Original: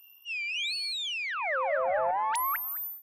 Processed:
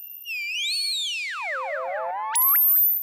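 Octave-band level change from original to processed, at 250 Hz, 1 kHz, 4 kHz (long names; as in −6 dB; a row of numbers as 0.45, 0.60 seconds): can't be measured, 0.0 dB, +6.5 dB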